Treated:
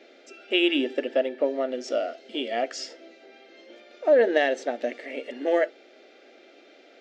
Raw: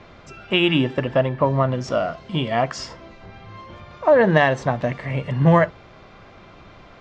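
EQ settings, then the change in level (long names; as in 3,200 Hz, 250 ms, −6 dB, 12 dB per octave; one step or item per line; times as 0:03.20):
linear-phase brick-wall high-pass 210 Hz
phaser with its sweep stopped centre 430 Hz, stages 4
−2.0 dB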